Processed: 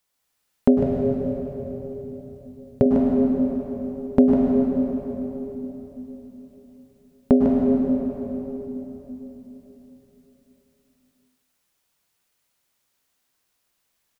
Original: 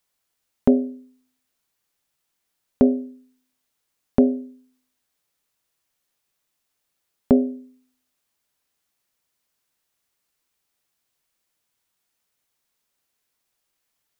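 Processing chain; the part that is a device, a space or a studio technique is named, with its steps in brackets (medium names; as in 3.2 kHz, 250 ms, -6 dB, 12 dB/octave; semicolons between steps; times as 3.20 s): cave (delay 151 ms -9 dB; reverberation RT60 3.8 s, pre-delay 97 ms, DRR -2 dB); 0.78–2.86 s: graphic EQ 125/250/500/1000 Hz +10/-9/+5/-7 dB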